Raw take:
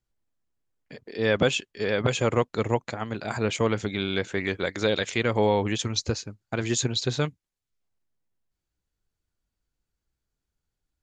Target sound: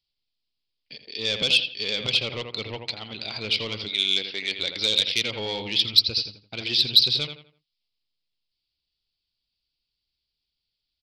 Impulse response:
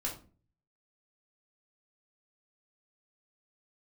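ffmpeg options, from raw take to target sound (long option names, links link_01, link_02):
-filter_complex "[0:a]asplit=2[link_01][link_02];[link_02]adelay=83,lowpass=frequency=2900:poles=1,volume=-8dB,asplit=2[link_03][link_04];[link_04]adelay=83,lowpass=frequency=2900:poles=1,volume=0.34,asplit=2[link_05][link_06];[link_06]adelay=83,lowpass=frequency=2900:poles=1,volume=0.34,asplit=2[link_07][link_08];[link_08]adelay=83,lowpass=frequency=2900:poles=1,volume=0.34[link_09];[link_01][link_03][link_05][link_07][link_09]amix=inputs=5:normalize=0,aresample=11025,aresample=44100,asettb=1/sr,asplit=3[link_10][link_11][link_12];[link_10]atrim=end=3.884[link_13];[link_11]atrim=start=3.88:end=4.59,asetpts=PTS-STARTPTS,afade=type=in:duration=0.004:curve=qsin,afade=type=out:start_time=0.706:duration=0.004:curve=qsin,equalizer=frequency=89:width_type=o:width=1.6:gain=-15[link_14];[link_12]atrim=start=4.586[link_15];[link_13][link_14]acrossfade=duration=0.004:curve1=hsin:curve2=qsin[link_16];[link_16][link_15]acrossfade=duration=0.004:curve1=qsin:curve2=hsin,asoftclip=type=tanh:threshold=-15dB,aexciter=amount=14.2:drive=4.6:freq=2500,volume=-9dB"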